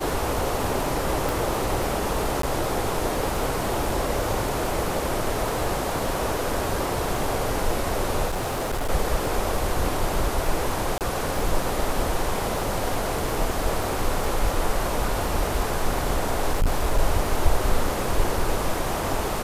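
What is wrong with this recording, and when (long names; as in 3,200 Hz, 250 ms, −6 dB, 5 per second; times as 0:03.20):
surface crackle 23 per second −28 dBFS
0:01.29: click
0:02.42–0:02.43: drop-out 13 ms
0:08.27–0:08.90: clipping −22.5 dBFS
0:10.98–0:11.01: drop-out 28 ms
0:16.49–0:16.99: clipping −16 dBFS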